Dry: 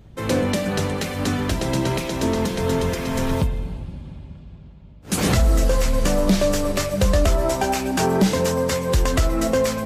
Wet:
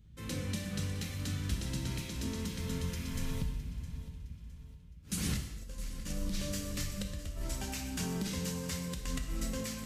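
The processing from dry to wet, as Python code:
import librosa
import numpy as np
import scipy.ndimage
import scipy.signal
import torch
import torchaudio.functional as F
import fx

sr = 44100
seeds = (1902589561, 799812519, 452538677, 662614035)

p1 = fx.tone_stack(x, sr, knobs='6-0-2')
p2 = fx.over_compress(p1, sr, threshold_db=-33.0, ratio=-0.5)
p3 = p2 + fx.echo_feedback(p2, sr, ms=662, feedback_pct=36, wet_db=-16.0, dry=0)
y = fx.rev_gated(p3, sr, seeds[0], gate_ms=320, shape='falling', drr_db=3.5)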